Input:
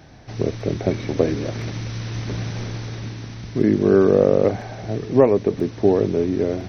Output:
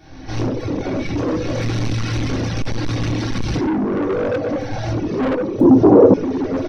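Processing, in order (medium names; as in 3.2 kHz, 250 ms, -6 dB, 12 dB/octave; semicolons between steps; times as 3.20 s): recorder AGC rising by 33 dB/s; comb 3.6 ms, depth 42%; simulated room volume 590 m³, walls mixed, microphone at 3.4 m; reverb removal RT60 1.6 s; saturation -11.5 dBFS, distortion -8 dB; 5.60–6.14 s: graphic EQ 125/250/500/1000/2000/4000 Hz +7/+8/+12/+8/-7/-6 dB; trim -5 dB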